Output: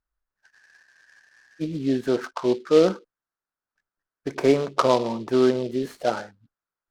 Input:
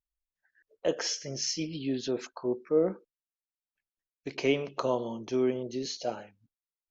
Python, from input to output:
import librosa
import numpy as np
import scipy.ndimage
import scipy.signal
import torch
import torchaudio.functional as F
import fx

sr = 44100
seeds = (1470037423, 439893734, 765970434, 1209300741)

y = fx.high_shelf_res(x, sr, hz=2200.0, db=-14.0, q=3.0)
y = fx.spec_freeze(y, sr, seeds[0], at_s=0.55, hold_s=1.07)
y = fx.noise_mod_delay(y, sr, seeds[1], noise_hz=3300.0, depth_ms=0.033)
y = y * 10.0 ** (8.0 / 20.0)